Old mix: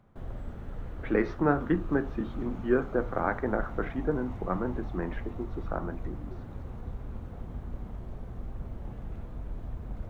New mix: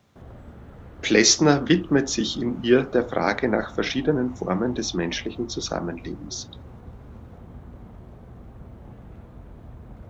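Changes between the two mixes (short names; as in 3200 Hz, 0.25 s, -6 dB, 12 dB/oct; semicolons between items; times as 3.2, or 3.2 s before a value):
speech: remove ladder low-pass 1600 Hz, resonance 40%; background: add HPF 67 Hz 12 dB/oct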